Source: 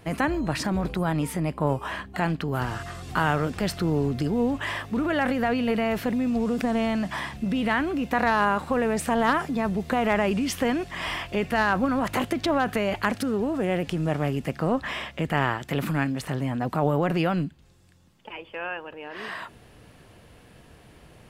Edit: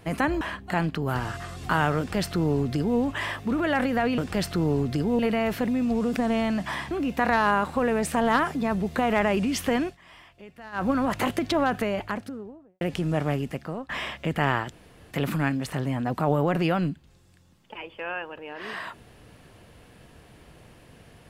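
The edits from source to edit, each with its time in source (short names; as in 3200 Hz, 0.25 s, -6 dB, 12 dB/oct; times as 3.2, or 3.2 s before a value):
0.41–1.87 cut
3.44–4.45 copy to 5.64
7.36–7.85 cut
10.77–11.8 dip -20 dB, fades 0.14 s
12.52–13.75 studio fade out
14.25–14.83 fade out, to -17.5 dB
15.66 insert room tone 0.39 s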